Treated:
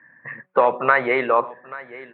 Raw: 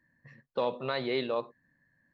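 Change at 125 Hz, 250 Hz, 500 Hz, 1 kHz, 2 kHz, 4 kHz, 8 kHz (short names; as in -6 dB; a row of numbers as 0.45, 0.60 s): +3.5 dB, +7.0 dB, +11.0 dB, +18.0 dB, +19.0 dB, -2.0 dB, n/a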